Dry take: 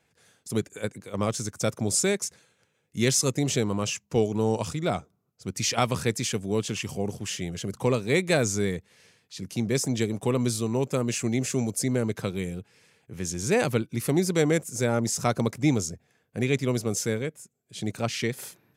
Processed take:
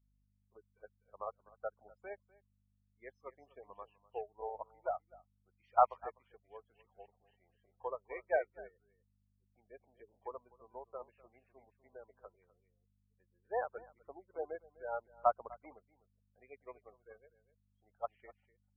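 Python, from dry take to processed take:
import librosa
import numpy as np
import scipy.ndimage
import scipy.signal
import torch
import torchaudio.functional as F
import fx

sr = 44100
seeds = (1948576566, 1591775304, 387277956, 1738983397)

p1 = fx.ladder_bandpass(x, sr, hz=920.0, resonance_pct=30)
p2 = fx.peak_eq(p1, sr, hz=1300.0, db=5.0, octaves=2.7)
p3 = fx.add_hum(p2, sr, base_hz=50, snr_db=11)
p4 = fx.spec_gate(p3, sr, threshold_db=-15, keep='strong')
p5 = p4 + fx.echo_single(p4, sr, ms=250, db=-9.0, dry=0)
p6 = fx.upward_expand(p5, sr, threshold_db=-48.0, expansion=2.5)
y = p6 * librosa.db_to_amplitude(7.5)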